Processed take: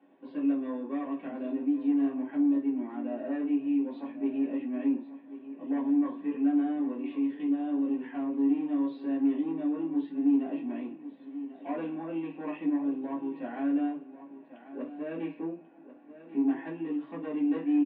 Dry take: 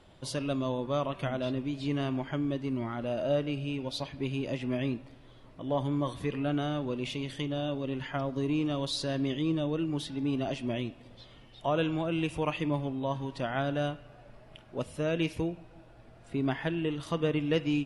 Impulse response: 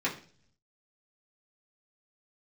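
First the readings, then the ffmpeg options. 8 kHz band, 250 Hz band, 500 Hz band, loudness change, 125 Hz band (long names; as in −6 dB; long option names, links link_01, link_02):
below −30 dB, +5.0 dB, −7.0 dB, +1.5 dB, below −20 dB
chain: -filter_complex "[0:a]highshelf=frequency=2000:gain=-11.5,aresample=11025,asoftclip=type=tanh:threshold=-27dB,aresample=44100,highpass=frequency=260:width=0.5412,highpass=frequency=260:width=1.3066,equalizer=frequency=270:width_type=q:width=4:gain=6,equalizer=frequency=480:width_type=q:width=4:gain=-6,equalizer=frequency=1300:width_type=q:width=4:gain=-7,equalizer=frequency=2100:width_type=q:width=4:gain=-4,lowpass=frequency=2700:width=0.5412,lowpass=frequency=2700:width=1.3066,aecho=1:1:1090|2180:0.2|0.0339[link_01];[1:a]atrim=start_sample=2205,atrim=end_sample=3528[link_02];[link_01][link_02]afir=irnorm=-1:irlink=0,volume=-7.5dB"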